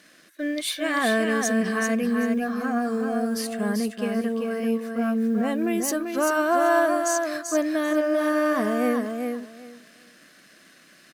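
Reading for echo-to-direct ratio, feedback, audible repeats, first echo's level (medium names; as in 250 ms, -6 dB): -5.0 dB, 18%, 3, -5.0 dB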